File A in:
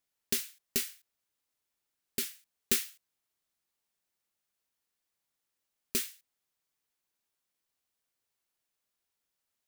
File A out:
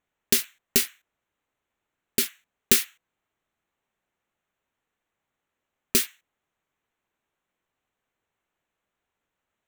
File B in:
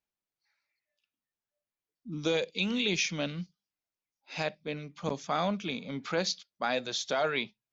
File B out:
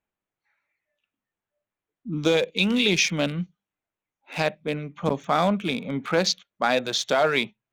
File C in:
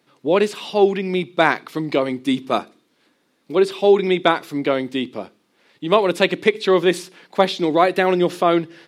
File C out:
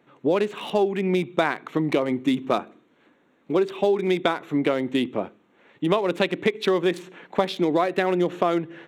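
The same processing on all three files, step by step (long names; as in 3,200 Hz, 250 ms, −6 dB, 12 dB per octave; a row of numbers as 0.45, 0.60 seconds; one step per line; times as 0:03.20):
adaptive Wiener filter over 9 samples
downward compressor 6 to 1, threshold −22 dBFS
loudness normalisation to −24 LKFS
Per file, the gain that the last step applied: +10.5, +9.0, +3.5 decibels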